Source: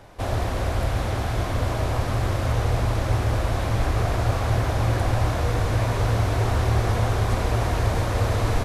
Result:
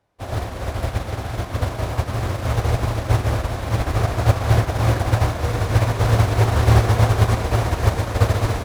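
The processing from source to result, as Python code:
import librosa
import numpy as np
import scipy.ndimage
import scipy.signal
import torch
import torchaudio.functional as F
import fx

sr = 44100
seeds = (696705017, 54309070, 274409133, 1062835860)

p1 = scipy.signal.sosfilt(scipy.signal.butter(2, 51.0, 'highpass', fs=sr, output='sos'), x)
p2 = fx.quant_float(p1, sr, bits=2)
p3 = p1 + F.gain(torch.from_numpy(p2), -6.0).numpy()
p4 = fx.rev_schroeder(p3, sr, rt60_s=3.5, comb_ms=28, drr_db=16.0)
p5 = fx.upward_expand(p4, sr, threshold_db=-35.0, expansion=2.5)
y = F.gain(torch.from_numpy(p5), 6.0).numpy()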